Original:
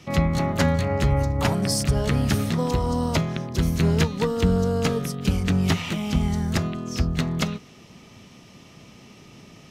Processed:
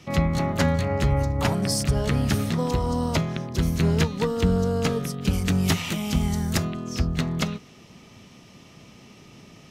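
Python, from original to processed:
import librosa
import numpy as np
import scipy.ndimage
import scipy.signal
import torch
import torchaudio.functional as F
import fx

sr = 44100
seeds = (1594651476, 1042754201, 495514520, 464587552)

y = fx.high_shelf(x, sr, hz=6800.0, db=11.5, at=(5.33, 6.65))
y = y * librosa.db_to_amplitude(-1.0)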